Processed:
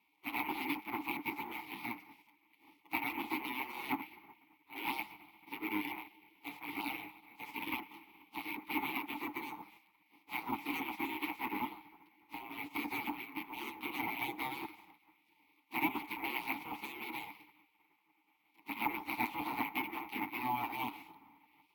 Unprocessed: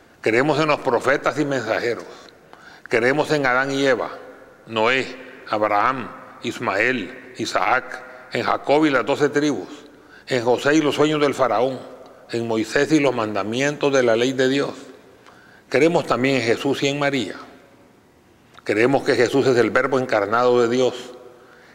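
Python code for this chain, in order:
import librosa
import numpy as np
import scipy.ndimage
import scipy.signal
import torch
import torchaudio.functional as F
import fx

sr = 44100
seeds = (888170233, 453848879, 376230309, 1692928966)

y = fx.lower_of_two(x, sr, delay_ms=8.2)
y = scipy.signal.sosfilt(scipy.signal.butter(2, 7600.0, 'lowpass', fs=sr, output='sos'), y)
y = fx.hum_notches(y, sr, base_hz=50, count=7)
y = fx.spec_gate(y, sr, threshold_db=-15, keep='weak')
y = fx.vowel_filter(y, sr, vowel='u')
y = fx.high_shelf(y, sr, hz=5800.0, db=-8.5)
y = np.repeat(y[::3], 3)[:len(y)]
y = y * librosa.db_to_amplitude(6.0)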